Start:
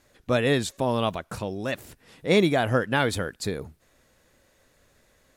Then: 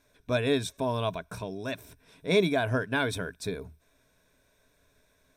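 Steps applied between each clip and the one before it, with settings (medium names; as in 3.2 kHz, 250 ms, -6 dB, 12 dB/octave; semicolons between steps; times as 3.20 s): rippled EQ curve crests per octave 1.6, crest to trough 10 dB; trim -6 dB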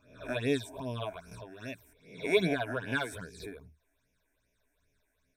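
reverse spectral sustain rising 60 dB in 0.62 s; phase shifter stages 8, 2.5 Hz, lowest notch 140–1300 Hz; upward expansion 1.5:1, over -40 dBFS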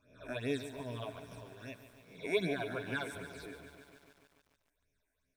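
bit-crushed delay 144 ms, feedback 80%, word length 9-bit, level -12 dB; trim -6 dB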